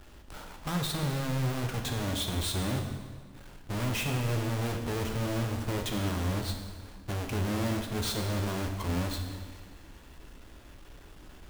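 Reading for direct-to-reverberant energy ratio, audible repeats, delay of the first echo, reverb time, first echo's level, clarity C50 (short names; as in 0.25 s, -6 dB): 3.0 dB, none, none, 1.6 s, none, 6.0 dB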